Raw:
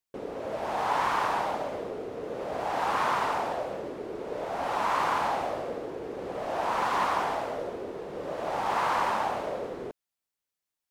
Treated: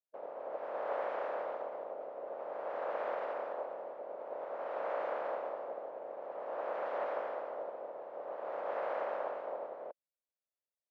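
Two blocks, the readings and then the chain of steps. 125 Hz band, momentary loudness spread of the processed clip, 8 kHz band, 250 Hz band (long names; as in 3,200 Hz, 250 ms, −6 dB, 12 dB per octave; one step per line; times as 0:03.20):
below −25 dB, 8 LU, below −30 dB, −17.0 dB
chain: ceiling on every frequency bin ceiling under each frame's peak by 16 dB
four-pole ladder band-pass 620 Hz, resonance 65%
level +1 dB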